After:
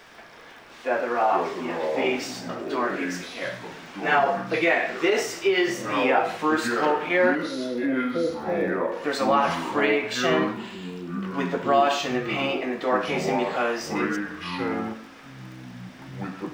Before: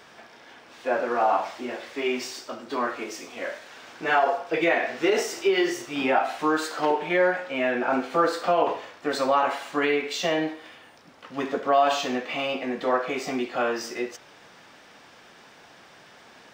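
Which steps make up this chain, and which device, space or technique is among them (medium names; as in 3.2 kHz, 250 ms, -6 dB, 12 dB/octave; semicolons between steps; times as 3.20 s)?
7.35–8.92 s: steep low-pass 550 Hz 48 dB/octave; peaking EQ 2.1 kHz +3 dB; ever faster or slower copies 115 ms, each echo -6 st, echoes 2, each echo -6 dB; vinyl LP (crackle 27 per s -42 dBFS; pink noise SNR 40 dB)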